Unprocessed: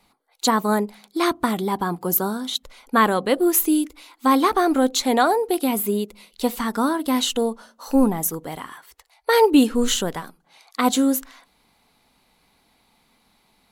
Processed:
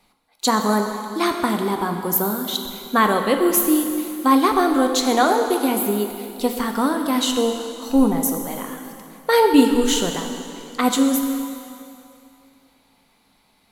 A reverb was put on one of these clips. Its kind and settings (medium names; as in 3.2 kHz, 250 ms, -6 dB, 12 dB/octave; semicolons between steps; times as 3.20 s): plate-style reverb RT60 2.6 s, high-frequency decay 0.9×, DRR 4 dB